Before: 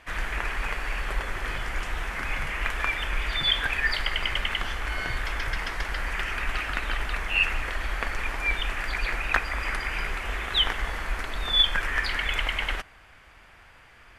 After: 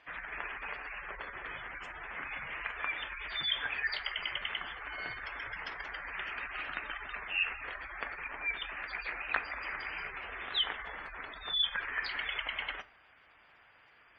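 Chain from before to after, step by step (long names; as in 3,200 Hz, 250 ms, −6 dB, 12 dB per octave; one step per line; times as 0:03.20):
gate on every frequency bin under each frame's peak −25 dB strong
high-pass filter 320 Hz 6 dB per octave
rectangular room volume 210 cubic metres, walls furnished, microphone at 0.37 metres
level −8 dB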